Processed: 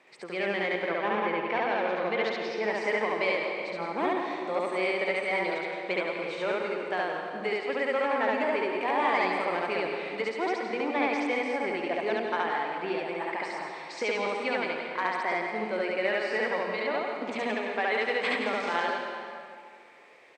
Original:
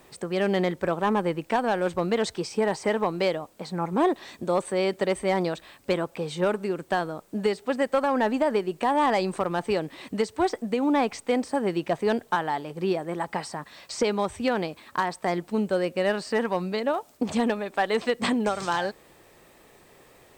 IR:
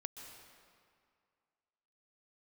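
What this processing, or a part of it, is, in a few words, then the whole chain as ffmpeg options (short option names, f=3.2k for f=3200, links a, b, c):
station announcement: -filter_complex "[0:a]asettb=1/sr,asplit=3[a][b][c];[a]atrim=end=0.804[d];[b]atrim=start=0.8:end=2.63,asetpts=PTS-STARTPTS,afade=t=in:d=0.004:c=qsin,afade=t=out:st=1.826:d=0.004:c=qsin,lowpass=f=5.5k:w=0.5412,lowpass=f=5.5k:w=1.3066[e];[c]atrim=start=2.626[f];[d][e]acrossfade=d=0.004:c1=hsin:c2=qsin[g];[g][f]acrossfade=d=0.004:c1=qsin:c2=hsin,highpass=320,lowpass=4.9k,equalizer=f=2.2k:t=o:w=0.47:g=11.5,aecho=1:1:69.97|169.1:1|0.447[h];[1:a]atrim=start_sample=2205[i];[h][i]afir=irnorm=-1:irlink=0,volume=-3dB"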